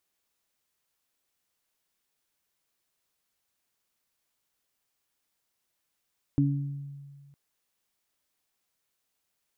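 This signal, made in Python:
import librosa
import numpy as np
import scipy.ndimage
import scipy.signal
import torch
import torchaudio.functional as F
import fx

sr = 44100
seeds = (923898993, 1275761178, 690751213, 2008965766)

y = fx.additive(sr, length_s=0.96, hz=141.0, level_db=-21.5, upper_db=(1.0,), decay_s=1.82, upper_decays_s=(0.69,))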